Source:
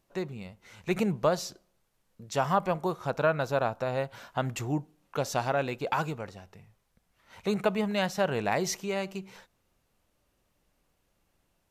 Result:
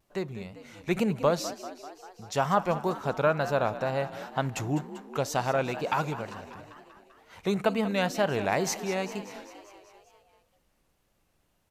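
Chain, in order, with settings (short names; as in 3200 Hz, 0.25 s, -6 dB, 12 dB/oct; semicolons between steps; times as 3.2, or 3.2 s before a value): frequency-shifting echo 0.196 s, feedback 65%, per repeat +47 Hz, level -14 dB; vibrato 2.1 Hz 71 cents; gain +1 dB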